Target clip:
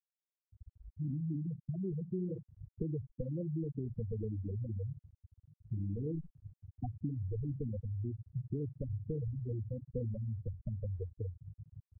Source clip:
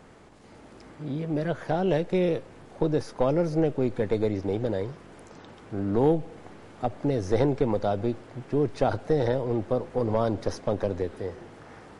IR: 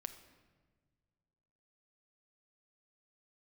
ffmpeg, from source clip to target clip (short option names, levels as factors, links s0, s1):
-filter_complex "[0:a]lowpass=f=1400:p=1,equalizer=f=68:w=0.48:g=15,aecho=1:1:0.8:0.33,asplit=2[s0][s1];[s1]aecho=0:1:61|122|183|244:0.282|0.104|0.0386|0.0143[s2];[s0][s2]amix=inputs=2:normalize=0,asoftclip=type=tanh:threshold=0.237,acompressor=threshold=0.0398:ratio=20,aeval=exprs='val(0)*gte(abs(val(0)),0.00631)':c=same,afftfilt=real='re*gte(hypot(re,im),0.126)':imag='im*gte(hypot(re,im),0.126)':win_size=1024:overlap=0.75,tiltshelf=f=870:g=-8.5,volume=1.33"